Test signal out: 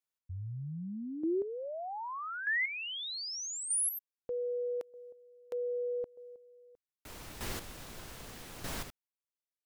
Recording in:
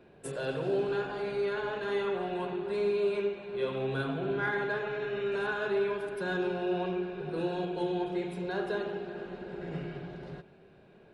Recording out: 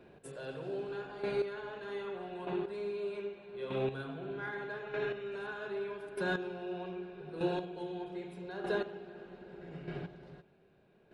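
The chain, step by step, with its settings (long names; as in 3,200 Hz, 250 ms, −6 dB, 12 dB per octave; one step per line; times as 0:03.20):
square-wave tremolo 0.81 Hz, depth 65%, duty 15%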